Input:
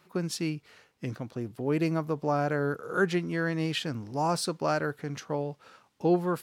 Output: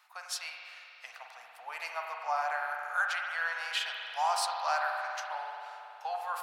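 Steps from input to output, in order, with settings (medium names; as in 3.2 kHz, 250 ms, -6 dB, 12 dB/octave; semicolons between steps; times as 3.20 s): elliptic high-pass 730 Hz, stop band 50 dB; spring tank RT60 3 s, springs 46 ms, chirp 30 ms, DRR 1 dB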